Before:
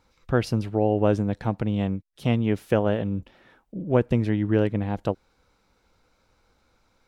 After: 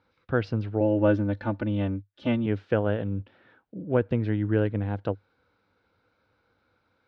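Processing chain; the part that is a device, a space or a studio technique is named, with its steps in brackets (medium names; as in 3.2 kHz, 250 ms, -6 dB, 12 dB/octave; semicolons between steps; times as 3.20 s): 0.80–2.46 s: comb 3.4 ms, depth 90%; guitar cabinet (cabinet simulation 87–4300 Hz, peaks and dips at 100 Hz +8 dB, 290 Hz +4 dB, 480 Hz +4 dB, 1.5 kHz +7 dB); trim -5.5 dB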